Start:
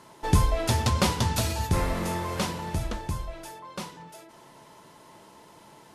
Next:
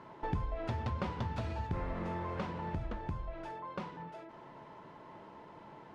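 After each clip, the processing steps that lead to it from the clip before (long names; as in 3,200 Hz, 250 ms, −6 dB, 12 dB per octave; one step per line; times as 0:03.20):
low-pass filter 2,000 Hz 12 dB per octave
downward compressor 3 to 1, threshold −37 dBFS, peak gain reduction 16 dB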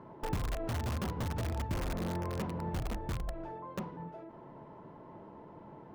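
tilt shelving filter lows +9 dB, about 1,300 Hz
in parallel at −3.5 dB: wrap-around overflow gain 24 dB
on the sum: level −8.5 dB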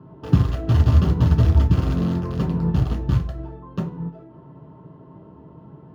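convolution reverb RT60 0.45 s, pre-delay 3 ms, DRR −0.5 dB
expander for the loud parts 1.5 to 1, over −29 dBFS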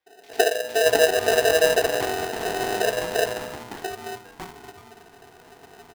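three-band delay without the direct sound highs, lows, mids 60/620 ms, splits 240/2,100 Hz
ring modulator with a square carrier 560 Hz
level −3.5 dB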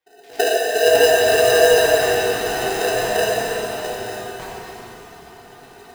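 dense smooth reverb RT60 3.4 s, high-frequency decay 0.95×, DRR −5 dB
level −1 dB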